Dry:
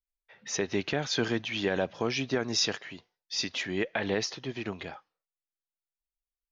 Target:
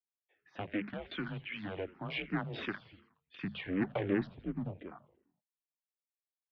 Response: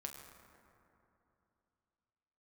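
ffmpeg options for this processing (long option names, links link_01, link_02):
-filter_complex "[0:a]afwtdn=0.0141,asplit=3[link_01][link_02][link_03];[link_01]afade=type=out:start_time=3.34:duration=0.02[link_04];[link_02]aemphasis=mode=reproduction:type=riaa,afade=type=in:start_time=3.34:duration=0.02,afade=type=out:start_time=4.67:duration=0.02[link_05];[link_03]afade=type=in:start_time=4.67:duration=0.02[link_06];[link_04][link_05][link_06]amix=inputs=3:normalize=0,bandreject=frequency=60:width_type=h:width=6,bandreject=frequency=120:width_type=h:width=6,bandreject=frequency=180:width_type=h:width=6,bandreject=frequency=240:width_type=h:width=6,bandreject=frequency=300:width_type=h:width=6,asettb=1/sr,asplit=3[link_07][link_08][link_09];[link_07]atrim=end=0.894[link_10];[link_08]atrim=start=0.89:end=2.09,asetpts=PTS-STARTPTS,afade=type=in:duration=0.004:curve=qsin,afade=type=out:start_time=1.196:duration=0.004:curve=qsin,equalizer=frequency=740:width=0.34:gain=-7.5[link_11];[link_09]atrim=start=2.086[link_12];[link_10][link_11]acrossfade=duration=0.004:curve1=hsin:curve2=qsin[link_13];[link_13][link_12]acrossfade=duration=0.004:curve1=qsin:curve2=hsin,aeval=exprs='clip(val(0),-1,0.0188)':channel_layout=same,asplit=6[link_14][link_15][link_16][link_17][link_18][link_19];[link_15]adelay=84,afreqshift=-110,volume=-20dB[link_20];[link_16]adelay=168,afreqshift=-220,volume=-24dB[link_21];[link_17]adelay=252,afreqshift=-330,volume=-28dB[link_22];[link_18]adelay=336,afreqshift=-440,volume=-32dB[link_23];[link_19]adelay=420,afreqshift=-550,volume=-36.1dB[link_24];[link_14][link_20][link_21][link_22][link_23][link_24]amix=inputs=6:normalize=0,highpass=frequency=220:width_type=q:width=0.5412,highpass=frequency=220:width_type=q:width=1.307,lowpass=frequency=3500:width_type=q:width=0.5176,lowpass=frequency=3500:width_type=q:width=0.7071,lowpass=frequency=3500:width_type=q:width=1.932,afreqshift=-91,asplit=2[link_25][link_26];[link_26]afreqshift=-2.7[link_27];[link_25][link_27]amix=inputs=2:normalize=1"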